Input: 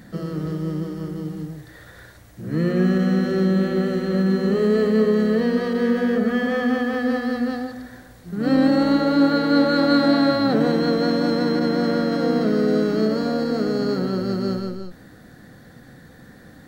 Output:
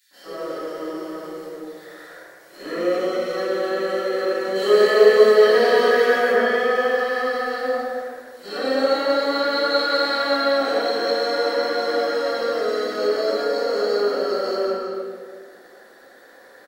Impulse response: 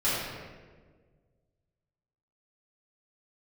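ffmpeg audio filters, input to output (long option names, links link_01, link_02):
-filter_complex "[0:a]highpass=frequency=430:width=0.5412,highpass=frequency=430:width=1.3066,acrossover=split=1800[link_01][link_02];[link_01]alimiter=limit=-23dB:level=0:latency=1:release=289[link_03];[link_03][link_02]amix=inputs=2:normalize=0,asettb=1/sr,asplit=3[link_04][link_05][link_06];[link_04]atrim=end=4.554[link_07];[link_05]atrim=start=4.55:end=6.3,asetpts=PTS-STARTPTS,afade=type=in:duration=0.004:curve=qsin,afade=type=out:start_time=1.746:duration=0.004:curve=qsin,acontrast=86[link_08];[link_06]atrim=start=6.296[link_09];[link_07][link_08]acrossfade=duration=0.004:curve1=hsin:curve2=qsin[link_10];[link_10][link_09]acrossfade=duration=0.004:curve1=qsin:curve2=hsin,asplit=2[link_11][link_12];[link_12]aeval=exprs='sgn(val(0))*max(abs(val(0))-0.00422,0)':channel_layout=same,volume=-4dB[link_13];[link_11][link_13]amix=inputs=2:normalize=0,asettb=1/sr,asplit=3[link_14][link_15][link_16];[link_14]atrim=end=2.634[link_17];[link_15]atrim=start=2.63:end=3.26,asetpts=PTS-STARTPTS,afade=type=in:duration=0.004:curve=qsin,afade=type=out:start_time=0.626:duration=0.004:curve=qsin,asuperstop=centerf=1700:order=4:qfactor=7.3[link_18];[link_16]atrim=start=3.256[link_19];[link_17][link_18]acrossfade=duration=0.004:curve1=hsin:curve2=qsin[link_20];[link_20][link_19]acrossfade=duration=0.004:curve1=qsin:curve2=hsin,acrossover=split=2600[link_21][link_22];[link_21]adelay=110[link_23];[link_23][link_22]amix=inputs=2:normalize=0[link_24];[1:a]atrim=start_sample=2205[link_25];[link_24][link_25]afir=irnorm=-1:irlink=0,volume=-8.5dB"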